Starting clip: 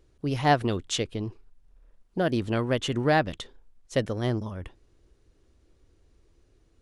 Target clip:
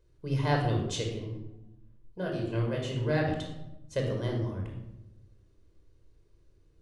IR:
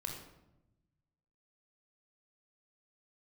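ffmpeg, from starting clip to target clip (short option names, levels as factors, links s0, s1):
-filter_complex "[0:a]asettb=1/sr,asplit=3[s0][s1][s2];[s0]atrim=end=1.144[s3];[s1]atrim=start=1.14:end=3.18,asetpts=PTS-STARTPTS,afade=t=in:d=0.004:c=qsin,afade=t=out:st=2.036:d=0.004:c=qsin,flanger=delay=20:depth=6.5:speed=1.8[s4];[s2]atrim=start=3.176[s5];[s3][s4]acrossfade=d=0.004:c1=hsin:c2=qsin[s6];[s6][s5]acrossfade=d=0.004:c1=qsin:c2=hsin[s7];[1:a]atrim=start_sample=2205[s8];[s7][s8]afir=irnorm=-1:irlink=0,volume=0.596"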